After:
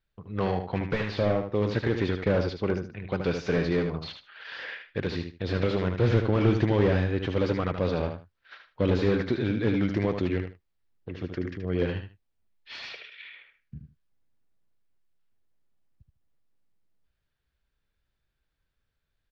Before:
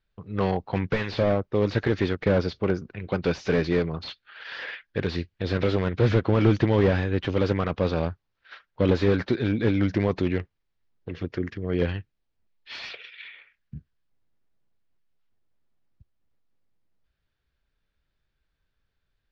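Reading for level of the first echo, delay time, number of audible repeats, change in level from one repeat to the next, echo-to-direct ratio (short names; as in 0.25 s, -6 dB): -7.0 dB, 76 ms, 2, -14.0 dB, -7.0 dB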